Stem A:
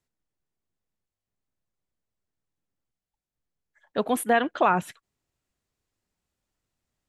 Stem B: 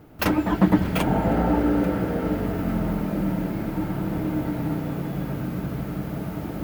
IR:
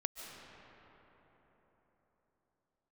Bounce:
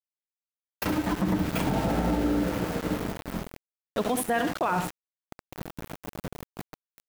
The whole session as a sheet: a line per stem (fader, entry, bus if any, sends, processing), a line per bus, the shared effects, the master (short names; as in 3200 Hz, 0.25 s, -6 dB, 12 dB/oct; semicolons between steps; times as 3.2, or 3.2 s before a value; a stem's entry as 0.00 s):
+2.0 dB, 0.00 s, no send, echo send -10 dB, dry
-3.5 dB, 0.60 s, no send, echo send -11 dB, auto duck -9 dB, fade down 0.80 s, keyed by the first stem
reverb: off
echo: feedback echo 68 ms, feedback 30%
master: expander -26 dBFS; sample gate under -30 dBFS; limiter -17 dBFS, peak gain reduction 10 dB